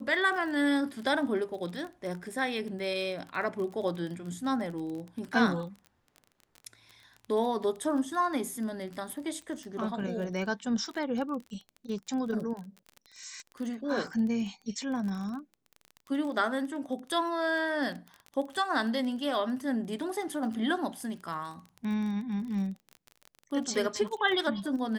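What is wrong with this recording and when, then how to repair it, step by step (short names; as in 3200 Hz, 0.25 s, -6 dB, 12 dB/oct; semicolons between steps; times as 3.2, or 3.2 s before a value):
crackle 22/s -36 dBFS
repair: de-click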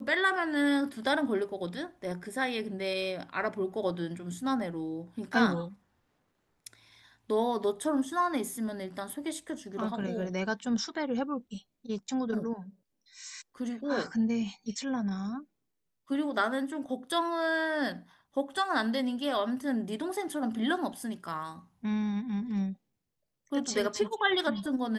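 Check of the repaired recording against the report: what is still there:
none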